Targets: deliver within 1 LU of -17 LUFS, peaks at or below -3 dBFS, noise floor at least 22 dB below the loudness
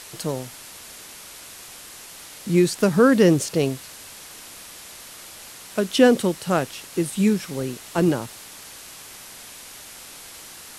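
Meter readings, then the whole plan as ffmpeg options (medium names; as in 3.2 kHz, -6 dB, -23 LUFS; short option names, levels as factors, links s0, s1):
noise floor -42 dBFS; noise floor target -43 dBFS; loudness -21.0 LUFS; peak level -3.5 dBFS; loudness target -17.0 LUFS
-> -af "afftdn=nr=6:nf=-42"
-af "volume=1.58,alimiter=limit=0.708:level=0:latency=1"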